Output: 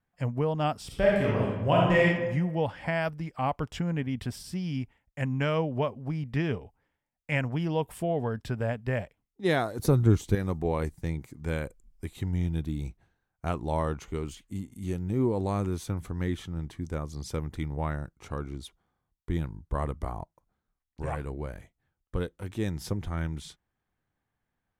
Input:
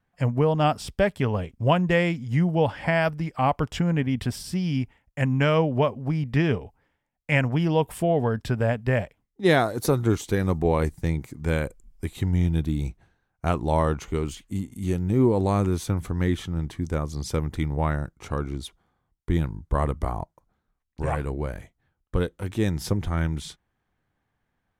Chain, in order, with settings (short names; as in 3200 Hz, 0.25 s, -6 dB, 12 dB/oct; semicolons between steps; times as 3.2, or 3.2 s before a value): 0.86–2.03 reverb throw, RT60 1.1 s, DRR -4.5 dB; 9.79–10.35 low shelf 240 Hz +12 dB; gain -6.5 dB